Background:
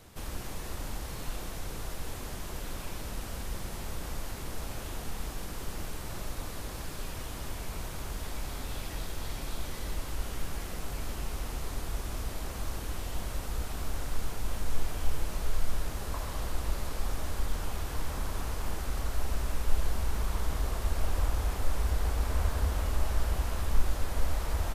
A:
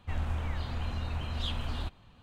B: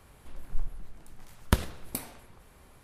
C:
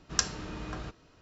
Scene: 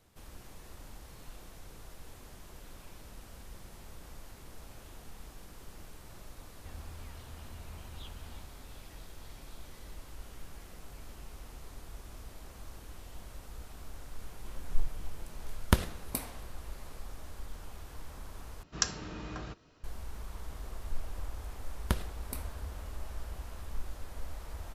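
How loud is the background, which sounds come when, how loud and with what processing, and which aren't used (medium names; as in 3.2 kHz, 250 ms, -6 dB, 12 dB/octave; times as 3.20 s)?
background -12 dB
6.57 s: add A -15 dB
14.20 s: add B -0.5 dB
18.63 s: replace with C -2.5 dB
20.38 s: add B -7 dB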